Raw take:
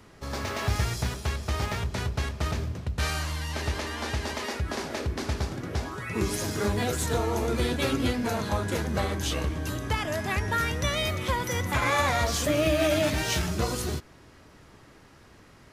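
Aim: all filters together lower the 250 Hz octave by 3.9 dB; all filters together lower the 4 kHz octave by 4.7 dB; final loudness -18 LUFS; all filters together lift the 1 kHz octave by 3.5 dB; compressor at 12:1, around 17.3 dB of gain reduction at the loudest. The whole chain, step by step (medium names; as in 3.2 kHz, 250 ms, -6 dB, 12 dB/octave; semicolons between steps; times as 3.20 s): peaking EQ 250 Hz -5.5 dB; peaking EQ 1 kHz +5 dB; peaking EQ 4 kHz -6.5 dB; compression 12:1, threshold -38 dBFS; trim +24 dB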